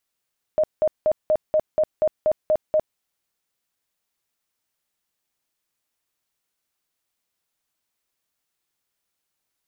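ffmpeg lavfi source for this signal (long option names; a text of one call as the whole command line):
ffmpeg -f lavfi -i "aevalsrc='0.178*sin(2*PI*619*mod(t,0.24))*lt(mod(t,0.24),35/619)':duration=2.4:sample_rate=44100" out.wav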